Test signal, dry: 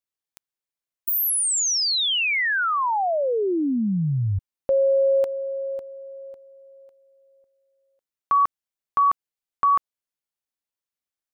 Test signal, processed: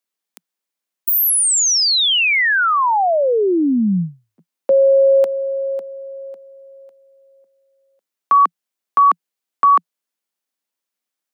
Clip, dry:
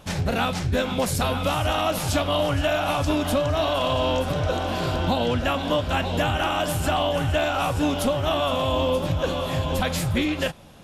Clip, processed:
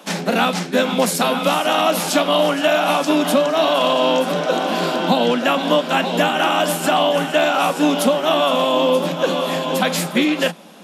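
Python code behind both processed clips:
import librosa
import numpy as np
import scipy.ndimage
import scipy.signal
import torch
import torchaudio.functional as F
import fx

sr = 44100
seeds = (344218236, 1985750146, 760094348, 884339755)

y = scipy.signal.sosfilt(scipy.signal.butter(16, 170.0, 'highpass', fs=sr, output='sos'), x)
y = y * librosa.db_to_amplitude(7.0)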